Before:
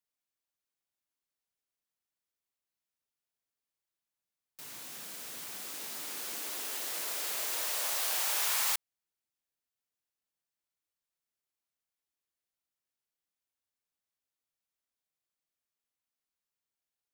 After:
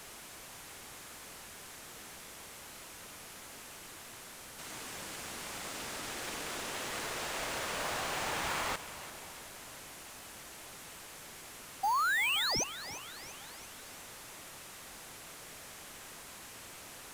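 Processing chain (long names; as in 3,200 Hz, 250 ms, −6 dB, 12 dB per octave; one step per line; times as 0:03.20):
linear delta modulator 64 kbit/s, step −44 dBFS
sound drawn into the spectrogram rise, 0:11.83–0:12.64, 760–6,500 Hz −33 dBFS
echo with a time of its own for lows and highs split 820 Hz, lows 524 ms, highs 342 ms, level −14 dB
in parallel at −4 dB: decimation without filtering 8×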